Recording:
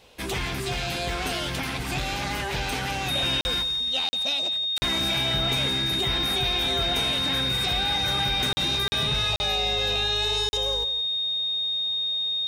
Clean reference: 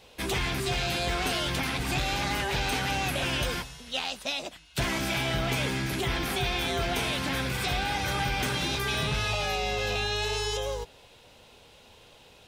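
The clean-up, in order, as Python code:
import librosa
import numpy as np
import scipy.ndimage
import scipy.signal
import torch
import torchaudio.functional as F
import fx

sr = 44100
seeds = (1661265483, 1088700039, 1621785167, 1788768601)

y = fx.notch(x, sr, hz=3700.0, q=30.0)
y = fx.fix_interpolate(y, sr, at_s=(3.41, 4.09, 4.78, 8.53, 8.88, 9.36, 10.49), length_ms=40.0)
y = fx.fix_echo_inverse(y, sr, delay_ms=170, level_db=-15.0)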